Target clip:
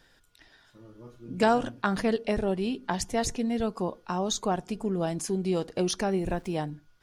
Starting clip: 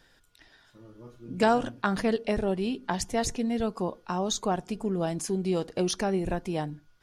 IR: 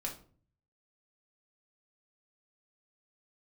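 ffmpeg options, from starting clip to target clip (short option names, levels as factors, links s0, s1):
-filter_complex "[0:a]asettb=1/sr,asplit=3[s0][s1][s2];[s0]atrim=end=6.114[s3];[s1]atrim=start=6.11:end=6.56,asetpts=PTS-STARTPTS,afade=t=in:d=0.004:c=qsin,afade=t=out:st=0.446:d=0.004:c=qsin,aeval=exprs='val(0)*gte(abs(val(0)),0.00237)':c=same[s4];[s2]atrim=start=6.556[s5];[s3][s4]acrossfade=d=0.004:c1=hsin:c2=qsin[s6];[s6][s5]acrossfade=d=0.004:c1=qsin:c2=hsin"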